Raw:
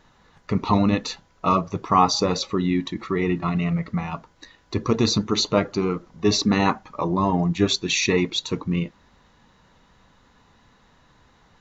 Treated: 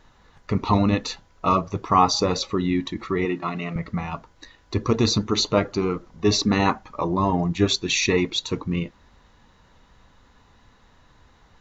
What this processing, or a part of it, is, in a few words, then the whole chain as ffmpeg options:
low shelf boost with a cut just above: -filter_complex "[0:a]asettb=1/sr,asplit=3[s0][s1][s2];[s0]atrim=end=3.254[s3];[s1]atrim=start=3.25:end=3.76,asetpts=PTS-STARTPTS,afade=t=in:d=0.004:c=qsin,afade=t=out:st=0.506:d=0.004:c=qsin,highpass=240[s4];[s2]atrim=start=3.756[s5];[s3][s4]acrossfade=d=0.004:c1=hsin:c2=qsin[s6];[s6][s5]acrossfade=d=0.004:c1=qsin:c2=hsin,lowshelf=f=98:g=7,equalizer=f=170:t=o:w=0.77:g=-4"

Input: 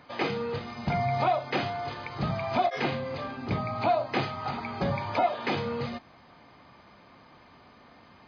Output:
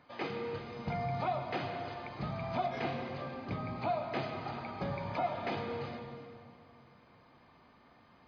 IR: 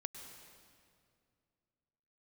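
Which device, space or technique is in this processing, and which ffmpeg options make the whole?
swimming-pool hall: -filter_complex "[1:a]atrim=start_sample=2205[s0];[0:a][s0]afir=irnorm=-1:irlink=0,highshelf=f=4400:g=-4.5,volume=0.562"

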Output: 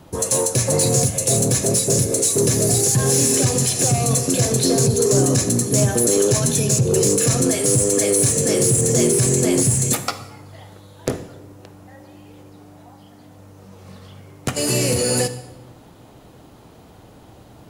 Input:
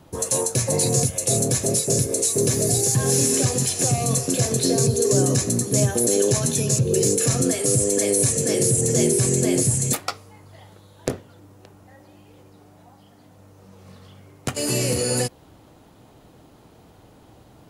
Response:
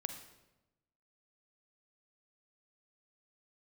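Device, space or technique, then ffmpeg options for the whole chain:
saturated reverb return: -filter_complex "[0:a]asplit=2[s0][s1];[1:a]atrim=start_sample=2205[s2];[s1][s2]afir=irnorm=-1:irlink=0,asoftclip=type=tanh:threshold=0.106,volume=1.33[s3];[s0][s3]amix=inputs=2:normalize=0,volume=0.794"

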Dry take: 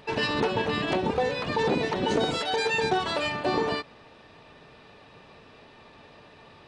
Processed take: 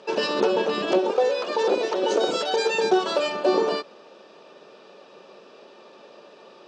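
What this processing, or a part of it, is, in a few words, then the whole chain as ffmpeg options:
television speaker: -filter_complex "[0:a]asettb=1/sr,asplit=3[s0][s1][s2];[s0]atrim=end=0.984[s3];[s1]atrim=start=0.98:end=2.27,asetpts=PTS-STARTPTS,afade=t=in:d=0.004:c=qsin,afade=t=out:st=1.286:d=0.004:c=qsin,highpass=350[s4];[s2]atrim=start=2.266[s5];[s3][s4]acrossfade=d=0.004:c1=hsin:c2=qsin[s6];[s6][s5]acrossfade=d=0.004:c1=qsin:c2=hsin,bass=f=250:g=-11,treble=f=4000:g=9,highpass=f=160:w=0.5412,highpass=f=160:w=1.3066,equalizer=f=200:t=q:w=4:g=8,equalizer=f=370:t=q:w=4:g=10,equalizer=f=550:t=q:w=4:g=10,equalizer=f=1300:t=q:w=4:g=4,equalizer=f=2000:t=q:w=4:g=-8,equalizer=f=4000:t=q:w=4:g=-4,lowpass=f=6800:w=0.5412,lowpass=f=6800:w=1.3066"

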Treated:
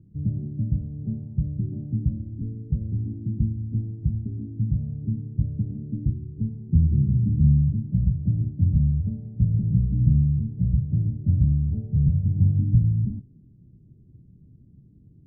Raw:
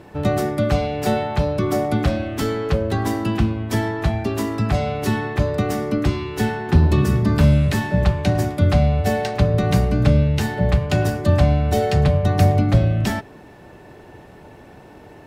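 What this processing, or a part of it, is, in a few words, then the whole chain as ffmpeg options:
the neighbour's flat through the wall: -af "lowpass=f=220:w=0.5412,lowpass=f=220:w=1.3066,equalizer=f=130:t=o:w=0.66:g=5,volume=0.531"

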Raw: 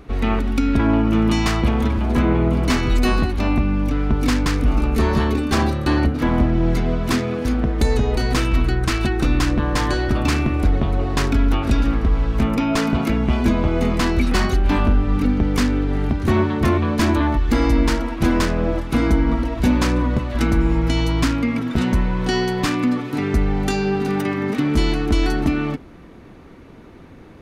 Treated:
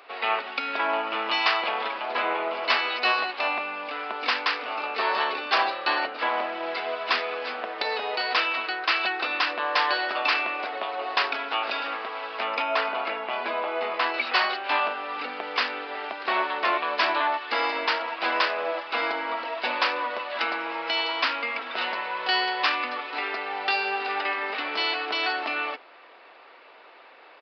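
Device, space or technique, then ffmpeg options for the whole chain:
musical greeting card: -filter_complex "[0:a]asettb=1/sr,asplit=3[s0][s1][s2];[s0]atrim=end=12.624[s3];[s1]atrim=start=12.62:end=14.14,asetpts=PTS-STARTPTS,afade=t=in:d=0.004:c=qsin,afade=t=out:st=1.516:d=0.004:c=qsin,aemphasis=mode=reproduction:type=75kf[s4];[s2]atrim=start=14.136[s5];[s3][s4]acrossfade=d=0.004:c1=hsin:c2=qsin[s6];[s6][s5]acrossfade=d=0.004:c1=qsin:c2=hsin,aresample=11025,aresample=44100,highpass=f=600:w=0.5412,highpass=f=600:w=1.3066,equalizer=f=2700:t=o:w=0.27:g=5,volume=1.19"

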